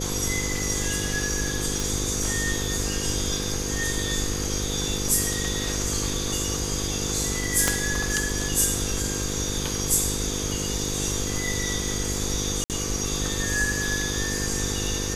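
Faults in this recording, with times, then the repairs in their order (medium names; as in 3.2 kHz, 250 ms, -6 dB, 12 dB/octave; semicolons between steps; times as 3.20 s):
buzz 50 Hz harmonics 10 -31 dBFS
1.80 s: pop
7.68 s: pop -5 dBFS
12.64–12.70 s: dropout 58 ms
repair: de-click; de-hum 50 Hz, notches 10; interpolate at 12.64 s, 58 ms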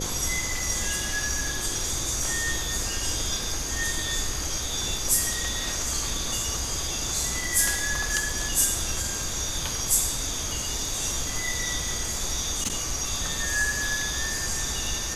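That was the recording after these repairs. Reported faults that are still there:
7.68 s: pop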